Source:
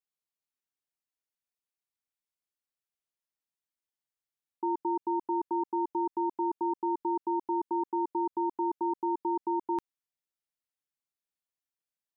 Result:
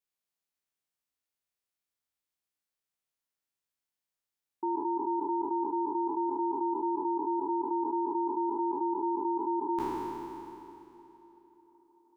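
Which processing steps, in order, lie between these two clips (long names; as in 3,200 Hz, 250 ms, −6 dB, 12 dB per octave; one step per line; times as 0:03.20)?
peak hold with a decay on every bin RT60 2.78 s
on a send: delay with a band-pass on its return 378 ms, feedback 70%, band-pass 540 Hz, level −23 dB
on the sum: level −1.5 dB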